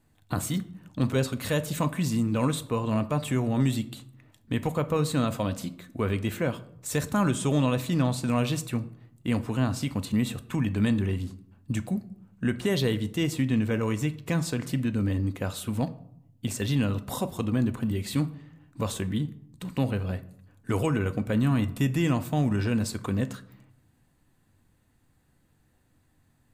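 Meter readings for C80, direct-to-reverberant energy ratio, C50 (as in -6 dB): 20.0 dB, 10.0 dB, 16.5 dB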